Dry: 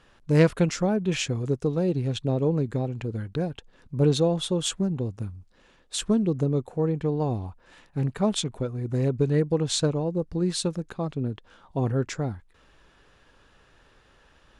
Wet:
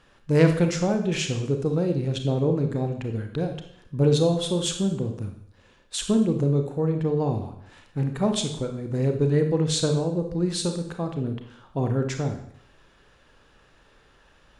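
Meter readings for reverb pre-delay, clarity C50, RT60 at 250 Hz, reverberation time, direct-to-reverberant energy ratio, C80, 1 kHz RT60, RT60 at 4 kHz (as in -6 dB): 28 ms, 7.5 dB, 0.65 s, 0.65 s, 5.5 dB, 11.0 dB, 0.65 s, 0.65 s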